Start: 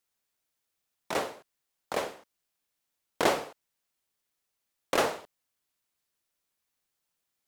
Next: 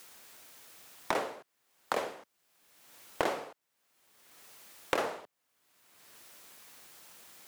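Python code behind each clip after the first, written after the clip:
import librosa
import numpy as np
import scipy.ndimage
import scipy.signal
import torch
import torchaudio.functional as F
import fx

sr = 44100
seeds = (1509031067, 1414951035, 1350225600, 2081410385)

y = fx.highpass(x, sr, hz=200.0, slope=6)
y = fx.band_squash(y, sr, depth_pct=100)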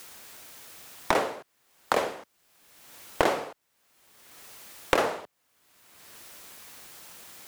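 y = fx.low_shelf(x, sr, hz=77.0, db=9.5)
y = F.gain(torch.from_numpy(y), 7.0).numpy()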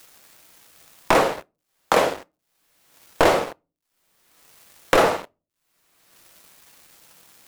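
y = fx.quant_dither(x, sr, seeds[0], bits=10, dither='none')
y = fx.room_shoebox(y, sr, seeds[1], volume_m3=130.0, walls='furnished', distance_m=0.63)
y = fx.leveller(y, sr, passes=3)
y = F.gain(torch.from_numpy(y), -3.0).numpy()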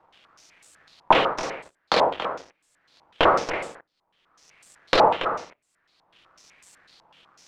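y = x + 10.0 ** (-10.0 / 20.0) * np.pad(x, (int(281 * sr / 1000.0), 0))[:len(x)]
y = fx.filter_held_lowpass(y, sr, hz=8.0, low_hz=920.0, high_hz=7900.0)
y = F.gain(torch.from_numpy(y), -4.5).numpy()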